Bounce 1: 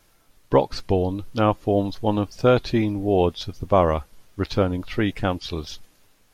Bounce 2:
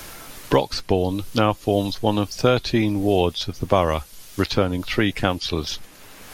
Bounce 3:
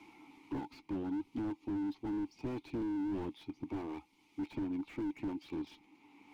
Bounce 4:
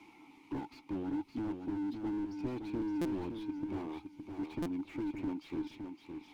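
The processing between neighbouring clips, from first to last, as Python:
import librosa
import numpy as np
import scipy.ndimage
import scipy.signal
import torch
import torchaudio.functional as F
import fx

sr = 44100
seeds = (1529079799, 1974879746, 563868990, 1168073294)

y1 = fx.high_shelf(x, sr, hz=2400.0, db=10.0)
y1 = fx.band_squash(y1, sr, depth_pct=70)
y2 = fx.vowel_filter(y1, sr, vowel='u')
y2 = fx.slew_limit(y2, sr, full_power_hz=8.4)
y2 = F.gain(torch.from_numpy(y2), -3.0).numpy()
y3 = fx.echo_feedback(y2, sr, ms=565, feedback_pct=18, wet_db=-6.5)
y3 = fx.buffer_glitch(y3, sr, at_s=(3.01, 4.62), block=256, repeats=6)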